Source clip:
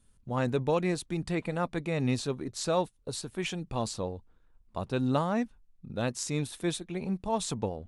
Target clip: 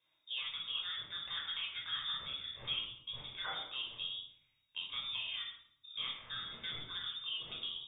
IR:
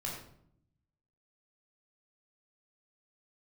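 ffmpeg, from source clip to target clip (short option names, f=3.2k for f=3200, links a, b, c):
-filter_complex "[0:a]highpass=f=490:p=1,lowpass=f=3.2k:t=q:w=0.5098,lowpass=f=3.2k:t=q:w=0.6013,lowpass=f=3.2k:t=q:w=0.9,lowpass=f=3.2k:t=q:w=2.563,afreqshift=-3800,acompressor=threshold=-38dB:ratio=6[a];[1:a]atrim=start_sample=2205,asetrate=39249,aresample=44100[b];[a][b]afir=irnorm=-1:irlink=0"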